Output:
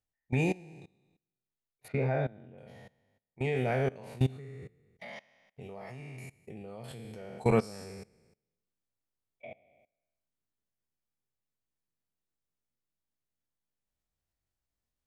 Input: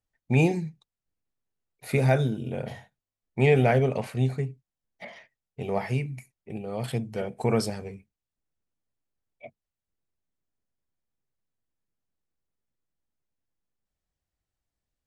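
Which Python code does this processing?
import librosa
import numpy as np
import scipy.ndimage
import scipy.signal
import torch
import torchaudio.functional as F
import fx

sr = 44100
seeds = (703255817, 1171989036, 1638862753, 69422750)

y = fx.spec_trails(x, sr, decay_s=0.84)
y = fx.level_steps(y, sr, step_db=22)
y = fx.lowpass(y, sr, hz=2100.0, slope=12, at=(1.88, 2.58))
y = fx.rider(y, sr, range_db=4, speed_s=0.5)
y = y * librosa.db_to_amplitude(-4.5)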